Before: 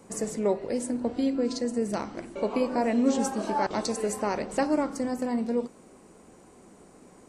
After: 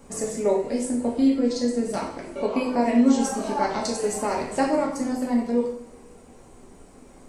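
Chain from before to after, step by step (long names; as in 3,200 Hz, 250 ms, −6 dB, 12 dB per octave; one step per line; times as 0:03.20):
reverb reduction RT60 0.56 s
coupled-rooms reverb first 0.58 s, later 2 s, DRR −2 dB
background noise brown −52 dBFS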